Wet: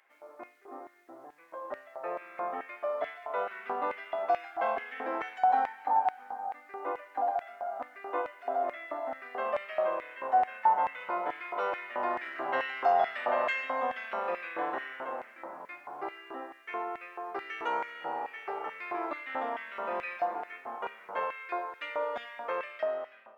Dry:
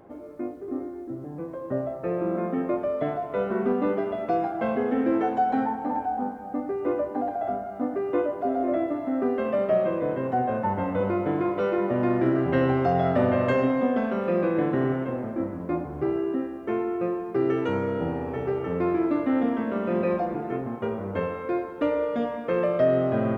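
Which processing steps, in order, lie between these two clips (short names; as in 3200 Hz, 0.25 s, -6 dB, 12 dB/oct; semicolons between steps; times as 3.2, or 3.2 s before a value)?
ending faded out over 1.02 s; Schroeder reverb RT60 2.9 s, combs from 32 ms, DRR 19.5 dB; LFO high-pass square 2.3 Hz 860–2100 Hz; gain -3 dB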